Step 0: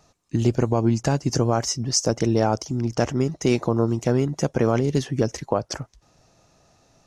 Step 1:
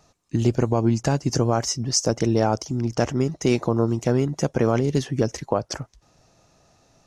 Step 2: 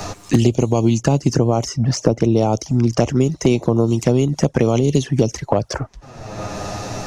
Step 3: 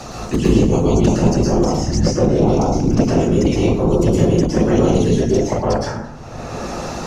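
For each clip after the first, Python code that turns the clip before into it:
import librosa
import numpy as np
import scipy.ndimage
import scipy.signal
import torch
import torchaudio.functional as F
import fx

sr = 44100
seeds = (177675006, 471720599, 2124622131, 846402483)

y1 = x
y2 = fx.env_flanger(y1, sr, rest_ms=10.2, full_db=-17.5)
y2 = fx.band_squash(y2, sr, depth_pct=100)
y2 = y2 * librosa.db_to_amplitude(5.5)
y3 = fx.whisperise(y2, sr, seeds[0])
y3 = fx.rev_plate(y3, sr, seeds[1], rt60_s=0.8, hf_ratio=0.55, predelay_ms=100, drr_db=-4.5)
y3 = y3 * librosa.db_to_amplitude(-4.5)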